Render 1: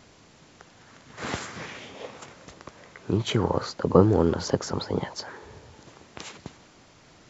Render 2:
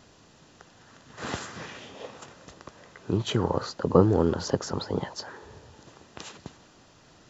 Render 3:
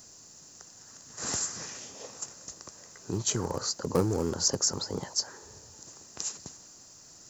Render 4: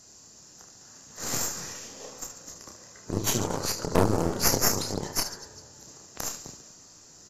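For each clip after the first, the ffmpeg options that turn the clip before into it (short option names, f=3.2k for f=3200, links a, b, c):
-af "bandreject=f=2.2k:w=7.6,volume=-1.5dB"
-filter_complex "[0:a]asplit=2[a][b];[b]aeval=exprs='0.112*(abs(mod(val(0)/0.112+3,4)-2)-1)':c=same,volume=-9dB[c];[a][c]amix=inputs=2:normalize=0,aexciter=amount=9.1:drive=6.6:freq=5k,volume=-8dB"
-af "aecho=1:1:30|75|142.5|243.8|395.6:0.631|0.398|0.251|0.158|0.1,aeval=exprs='0.335*(cos(1*acos(clip(val(0)/0.335,-1,1)))-cos(1*PI/2))+0.168*(cos(4*acos(clip(val(0)/0.335,-1,1)))-cos(4*PI/2))':c=same,volume=-2dB" -ar 32000 -c:a aac -b:a 48k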